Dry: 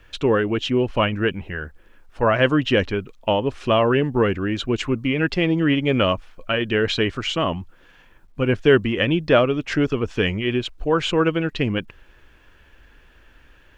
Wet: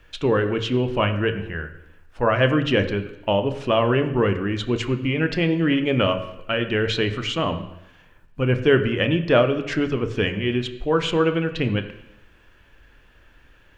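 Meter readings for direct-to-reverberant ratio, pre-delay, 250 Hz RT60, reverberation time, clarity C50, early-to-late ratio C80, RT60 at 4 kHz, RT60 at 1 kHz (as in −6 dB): 8.0 dB, 24 ms, 0.85 s, 0.85 s, 11.5 dB, 13.0 dB, 0.90 s, 0.85 s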